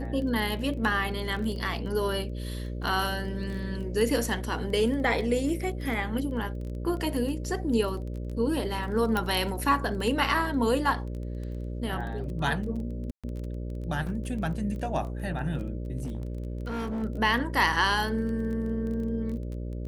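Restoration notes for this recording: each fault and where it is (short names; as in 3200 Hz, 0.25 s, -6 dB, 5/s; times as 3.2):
buzz 60 Hz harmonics 10 -34 dBFS
crackle 17/s -35 dBFS
4.3 gap 2.3 ms
9.17 pop -14 dBFS
13.11–13.24 gap 0.126 s
16.03–17.04 clipped -28.5 dBFS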